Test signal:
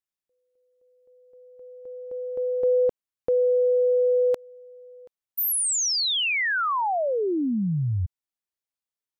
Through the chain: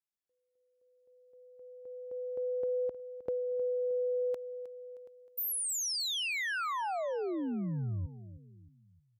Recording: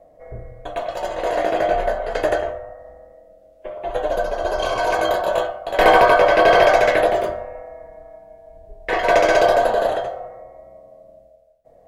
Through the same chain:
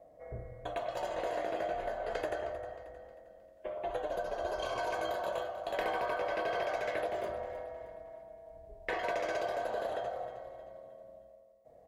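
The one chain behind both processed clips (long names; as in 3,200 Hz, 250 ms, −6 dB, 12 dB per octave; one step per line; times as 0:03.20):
downward compressor 6 to 1, threshold −25 dBFS
high-pass filter 42 Hz
on a send: repeating echo 312 ms, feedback 42%, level −14 dB
on the sum: level −7.5 dB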